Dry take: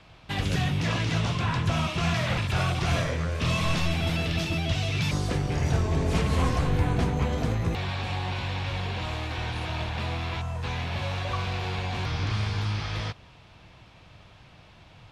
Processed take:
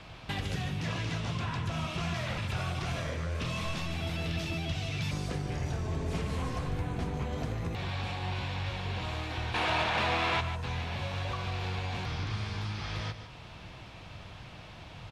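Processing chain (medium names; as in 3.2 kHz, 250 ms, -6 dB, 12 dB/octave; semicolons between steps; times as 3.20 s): compression 3:1, threshold -40 dBFS, peak gain reduction 15.5 dB; 9.54–10.41 s: overdrive pedal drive 21 dB, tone 2.5 kHz, clips at -21 dBFS; on a send: delay 148 ms -10 dB; on the sum: trim +4.5 dB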